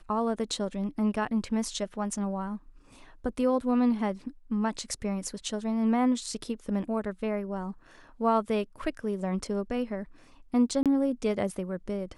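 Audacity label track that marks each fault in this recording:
10.830000	10.860000	gap 27 ms

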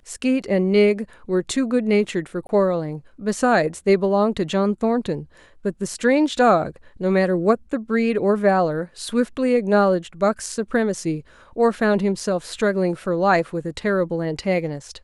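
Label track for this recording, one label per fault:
2.470000	2.490000	gap 21 ms

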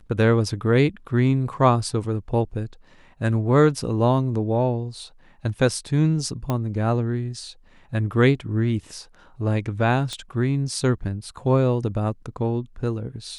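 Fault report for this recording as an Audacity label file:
6.500000	6.500000	pop -12 dBFS
10.130000	10.130000	pop -17 dBFS

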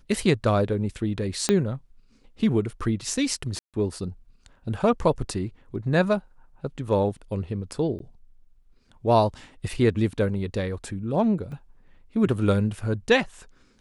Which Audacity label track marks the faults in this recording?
1.490000	1.490000	pop -7 dBFS
3.590000	3.740000	gap 0.147 s
7.990000	8.000000	gap 12 ms
11.520000	11.520000	gap 2.1 ms

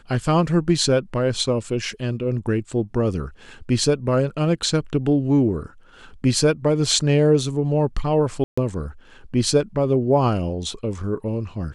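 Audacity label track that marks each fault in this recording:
8.440000	8.570000	gap 0.135 s

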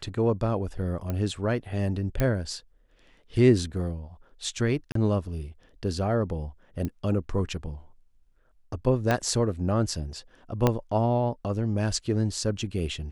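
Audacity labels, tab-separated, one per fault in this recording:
1.100000	1.100000	pop -18 dBFS
2.200000	2.200000	pop -12 dBFS
4.920000	4.950000	gap 33 ms
6.850000	6.850000	pop -19 dBFS
9.110000	9.110000	pop -11 dBFS
10.670000	10.670000	pop -8 dBFS

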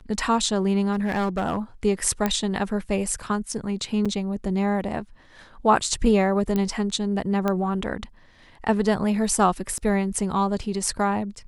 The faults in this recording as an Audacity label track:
0.920000	1.580000	clipped -20 dBFS
2.260000	2.260000	pop -9 dBFS
4.050000	4.060000	gap 5.7 ms
6.560000	6.560000	pop -12 dBFS
7.480000	7.480000	pop -12 dBFS
9.780000	9.780000	gap 4.7 ms

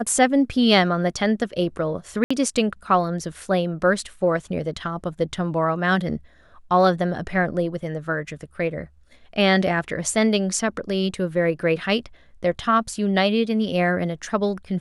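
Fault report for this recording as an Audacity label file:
2.240000	2.310000	gap 65 ms

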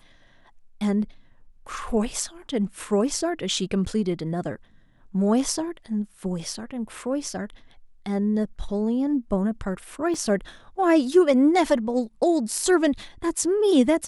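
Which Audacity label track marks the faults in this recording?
10.140000	10.140000	gap 3.1 ms

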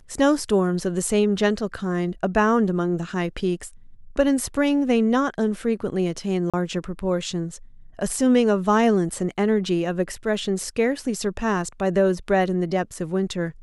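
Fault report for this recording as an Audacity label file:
6.500000	6.540000	gap 36 ms

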